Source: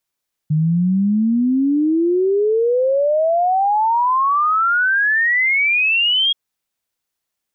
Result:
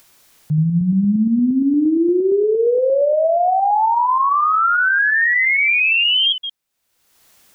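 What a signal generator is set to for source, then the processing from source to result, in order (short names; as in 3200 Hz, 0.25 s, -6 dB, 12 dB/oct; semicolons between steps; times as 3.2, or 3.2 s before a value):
log sweep 150 Hz -> 3300 Hz 5.83 s -13 dBFS
reverse delay 0.116 s, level -9 dB; upward compressor, threshold -31 dBFS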